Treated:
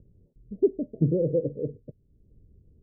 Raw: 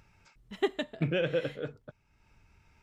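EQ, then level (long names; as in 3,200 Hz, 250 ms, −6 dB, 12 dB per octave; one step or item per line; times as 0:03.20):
Butterworth low-pass 510 Hz 48 dB per octave
+7.5 dB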